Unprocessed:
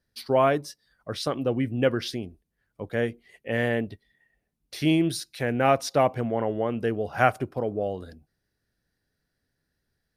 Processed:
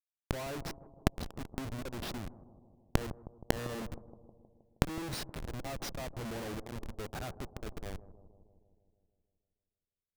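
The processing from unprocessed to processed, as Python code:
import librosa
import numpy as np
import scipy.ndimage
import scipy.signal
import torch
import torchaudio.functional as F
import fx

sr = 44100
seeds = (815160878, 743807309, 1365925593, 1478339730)

y = fx.high_shelf(x, sr, hz=11000.0, db=-2.5)
y = fx.transient(y, sr, attack_db=7, sustain_db=3)
y = fx.leveller(y, sr, passes=1)
y = fx.auto_swell(y, sr, attack_ms=362.0)
y = fx.schmitt(y, sr, flips_db=-31.0)
y = fx.gate_flip(y, sr, shuts_db=-41.0, range_db=-25)
y = fx.echo_bbd(y, sr, ms=157, stages=1024, feedback_pct=65, wet_db=-15.0)
y = F.gain(torch.from_numpy(y), 16.5).numpy()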